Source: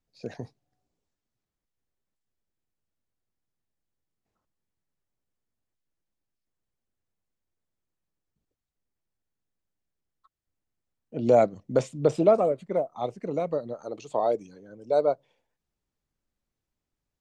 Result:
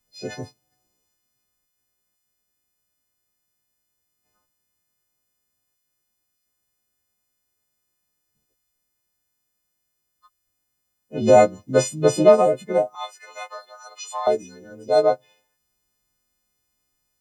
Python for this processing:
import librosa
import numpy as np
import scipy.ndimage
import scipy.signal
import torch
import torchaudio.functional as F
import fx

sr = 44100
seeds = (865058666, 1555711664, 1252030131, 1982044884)

y = fx.freq_snap(x, sr, grid_st=3)
y = fx.cheby_harmonics(y, sr, harmonics=(7,), levels_db=(-43,), full_scale_db=-7.0)
y = fx.highpass(y, sr, hz=970.0, slope=24, at=(12.95, 14.27))
y = y * 10.0 ** (6.0 / 20.0)